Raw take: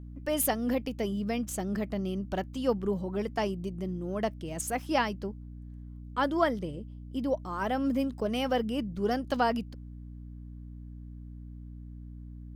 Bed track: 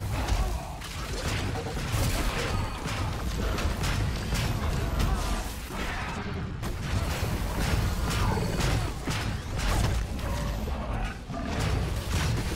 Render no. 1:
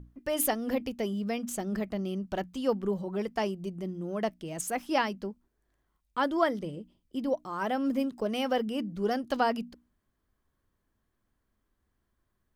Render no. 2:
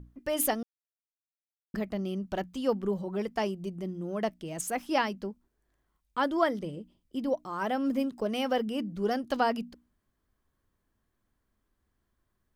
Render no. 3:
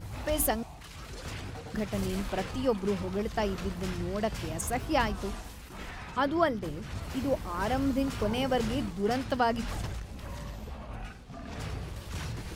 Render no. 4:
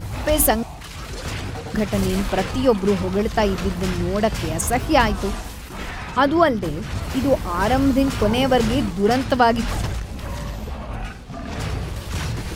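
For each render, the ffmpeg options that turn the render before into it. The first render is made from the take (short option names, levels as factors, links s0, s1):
-af "bandreject=f=60:t=h:w=6,bandreject=f=120:t=h:w=6,bandreject=f=180:t=h:w=6,bandreject=f=240:t=h:w=6,bandreject=f=300:t=h:w=6"
-filter_complex "[0:a]asplit=3[s0][s1][s2];[s0]atrim=end=0.63,asetpts=PTS-STARTPTS,afade=t=out:st=0.626:d=0.004:c=hsin[s3];[s1]atrim=start=0.63:end=1.74,asetpts=PTS-STARTPTS,volume=0[s4];[s2]atrim=start=1.74,asetpts=PTS-STARTPTS,afade=t=in:d=0.004:c=hsin[s5];[s3][s4][s5]concat=n=3:v=0:a=1"
-filter_complex "[1:a]volume=0.335[s0];[0:a][s0]amix=inputs=2:normalize=0"
-af "volume=3.55,alimiter=limit=0.708:level=0:latency=1"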